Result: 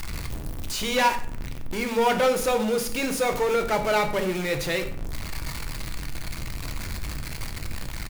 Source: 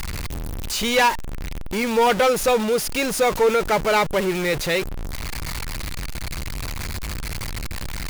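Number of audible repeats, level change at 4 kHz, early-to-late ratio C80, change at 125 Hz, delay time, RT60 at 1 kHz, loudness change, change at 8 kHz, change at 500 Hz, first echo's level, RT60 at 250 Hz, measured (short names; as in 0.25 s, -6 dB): 1, -4.5 dB, 13.5 dB, -3.0 dB, 91 ms, 0.50 s, -4.0 dB, -4.5 dB, -4.0 dB, -17.5 dB, 0.85 s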